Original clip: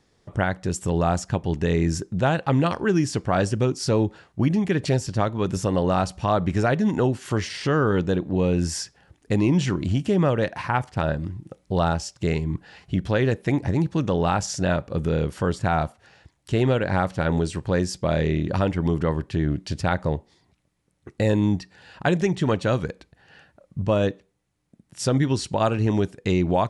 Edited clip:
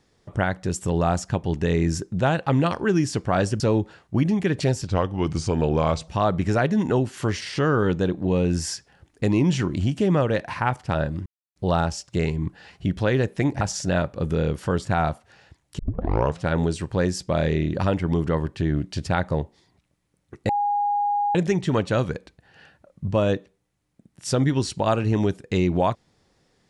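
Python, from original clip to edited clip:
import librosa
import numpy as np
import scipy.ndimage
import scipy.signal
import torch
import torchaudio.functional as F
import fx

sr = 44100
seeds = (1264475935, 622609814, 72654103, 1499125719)

y = fx.edit(x, sr, fx.cut(start_s=3.6, length_s=0.25),
    fx.speed_span(start_s=5.12, length_s=1.04, speed=0.86),
    fx.silence(start_s=11.34, length_s=0.3),
    fx.cut(start_s=13.69, length_s=0.66),
    fx.tape_start(start_s=16.53, length_s=0.64),
    fx.bleep(start_s=21.23, length_s=0.86, hz=820.0, db=-19.5), tone=tone)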